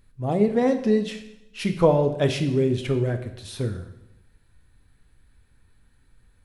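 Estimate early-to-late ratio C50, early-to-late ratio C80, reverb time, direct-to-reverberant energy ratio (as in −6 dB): 10.5 dB, 12.5 dB, 0.85 s, 6.5 dB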